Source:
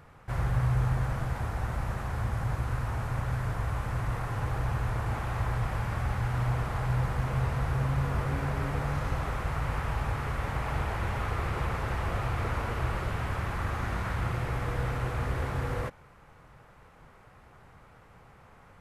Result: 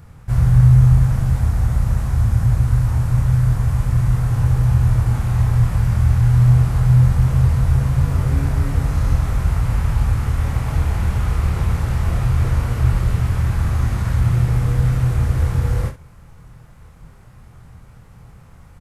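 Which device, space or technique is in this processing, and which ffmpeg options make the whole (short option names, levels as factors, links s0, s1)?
slapback doubling: -filter_complex "[0:a]asplit=3[s0][s1][s2];[s1]adelay=25,volume=0.562[s3];[s2]adelay=65,volume=0.266[s4];[s0][s3][s4]amix=inputs=3:normalize=0,bass=f=250:g=14,treble=f=4000:g=11"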